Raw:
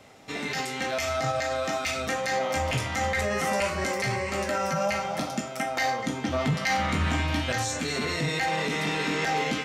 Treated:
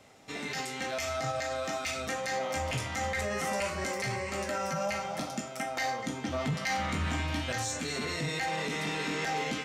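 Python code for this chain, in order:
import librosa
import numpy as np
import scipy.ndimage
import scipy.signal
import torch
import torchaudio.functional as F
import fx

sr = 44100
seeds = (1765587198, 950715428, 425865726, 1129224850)

p1 = fx.peak_eq(x, sr, hz=7800.0, db=3.0, octaves=1.1)
p2 = np.clip(p1, -10.0 ** (-23.0 / 20.0), 10.0 ** (-23.0 / 20.0))
p3 = p1 + (p2 * librosa.db_to_amplitude(-9.0))
y = p3 * librosa.db_to_amplitude(-8.0)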